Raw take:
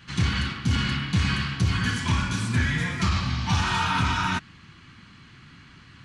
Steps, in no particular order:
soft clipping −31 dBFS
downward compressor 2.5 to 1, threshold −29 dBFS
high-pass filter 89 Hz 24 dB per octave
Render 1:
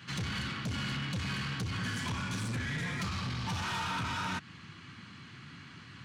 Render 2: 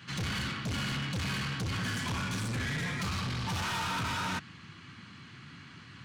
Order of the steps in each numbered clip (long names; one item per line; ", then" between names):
downward compressor, then high-pass filter, then soft clipping
high-pass filter, then soft clipping, then downward compressor